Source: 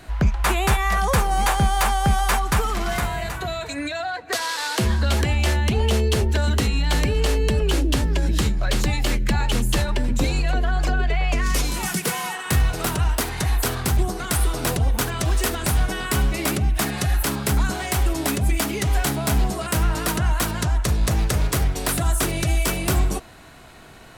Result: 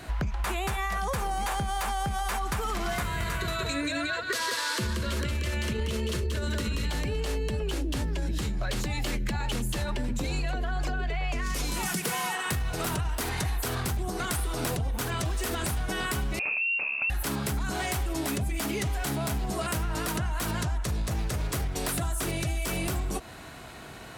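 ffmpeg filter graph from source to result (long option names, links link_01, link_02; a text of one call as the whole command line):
ffmpeg -i in.wav -filter_complex "[0:a]asettb=1/sr,asplit=3[link_01][link_02][link_03];[link_01]atrim=end=3.024[link_04];[link_02]atrim=start=3.02:end=6.9,asetpts=PTS-STARTPTS,afade=type=in:duration=0.004:curve=qsin,afade=type=out:start_time=3.876:duration=0.004:curve=qsin,asuperstop=centerf=770:order=4:qfactor=2.6,aecho=1:1:182:0.708,atrim=end_sample=171108[link_05];[link_03]atrim=start=6.896[link_06];[link_04][link_05]acrossfade=duration=0.004:curve1=hsin:curve2=qsin[link_07];[link_07][link_06]acrossfade=duration=0.004:curve1=qsin:curve2=hsin,asettb=1/sr,asplit=3[link_08][link_09][link_10];[link_08]atrim=end=16.394[link_11];[link_09]atrim=start=16.39:end=17.1,asetpts=PTS-STARTPTS,afade=type=in:duration=0.004:curve=qsin,afade=type=out:start_time=0.706:duration=0.004:curve=qsin,asuperstop=centerf=1000:order=4:qfactor=0.6,adynamicsmooth=sensitivity=3:basefreq=560,lowpass=frequency=2400:width_type=q:width=0.5098,lowpass=frequency=2400:width_type=q:width=0.6013,lowpass=frequency=2400:width_type=q:width=0.9,lowpass=frequency=2400:width_type=q:width=2.563,afreqshift=-2800[link_12];[link_10]atrim=start=17.096[link_13];[link_11][link_12]acrossfade=duration=0.004:curve1=hsin:curve2=qsin[link_14];[link_14][link_13]acrossfade=duration=0.004:curve1=qsin:curve2=hsin,highpass=45,alimiter=limit=-17dB:level=0:latency=1:release=44,acompressor=threshold=-28dB:ratio=6,volume=1.5dB" out.wav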